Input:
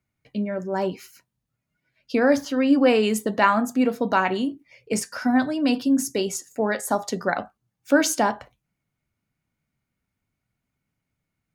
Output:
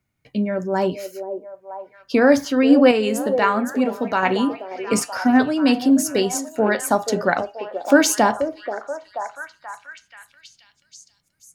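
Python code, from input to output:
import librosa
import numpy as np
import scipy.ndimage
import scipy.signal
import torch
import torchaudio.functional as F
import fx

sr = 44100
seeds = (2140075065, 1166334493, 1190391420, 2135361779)

y = fx.comb_fb(x, sr, f0_hz=81.0, decay_s=0.31, harmonics='odd', damping=0.0, mix_pct=50, at=(2.91, 4.23))
y = fx.echo_stepped(y, sr, ms=482, hz=490.0, octaves=0.7, feedback_pct=70, wet_db=-6.5)
y = F.gain(torch.from_numpy(y), 4.5).numpy()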